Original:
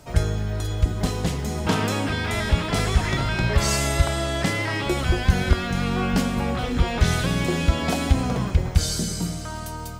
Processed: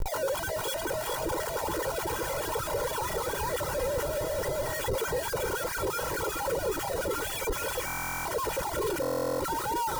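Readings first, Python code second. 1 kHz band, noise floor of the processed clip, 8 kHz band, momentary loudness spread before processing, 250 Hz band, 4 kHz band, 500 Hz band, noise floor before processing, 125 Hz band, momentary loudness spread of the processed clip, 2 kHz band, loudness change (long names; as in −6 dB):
−2.0 dB, −34 dBFS, −4.0 dB, 5 LU, −14.0 dB, −8.5 dB, −0.5 dB, −32 dBFS, −18.5 dB, 1 LU, −7.0 dB, −7.0 dB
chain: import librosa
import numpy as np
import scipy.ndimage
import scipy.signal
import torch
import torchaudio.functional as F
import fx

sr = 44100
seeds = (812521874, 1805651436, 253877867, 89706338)

p1 = fx.sine_speech(x, sr)
p2 = fx.over_compress(p1, sr, threshold_db=-30.0, ratio=-1.0)
p3 = fx.dmg_crackle(p2, sr, seeds[0], per_s=200.0, level_db=-37.0)
p4 = p3 + fx.echo_feedback(p3, sr, ms=423, feedback_pct=31, wet_db=-3.0, dry=0)
p5 = fx.schmitt(p4, sr, flips_db=-32.5)
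p6 = fx.dereverb_blind(p5, sr, rt60_s=0.58)
p7 = fx.peak_eq(p6, sr, hz=2600.0, db=-11.0, octaves=2.0)
p8 = p7 + 0.74 * np.pad(p7, (int(2.1 * sr / 1000.0), 0))[:len(p7)]
p9 = fx.buffer_glitch(p8, sr, at_s=(7.86, 9.01), block=1024, repeats=16)
y = p9 * librosa.db_to_amplitude(-1.5)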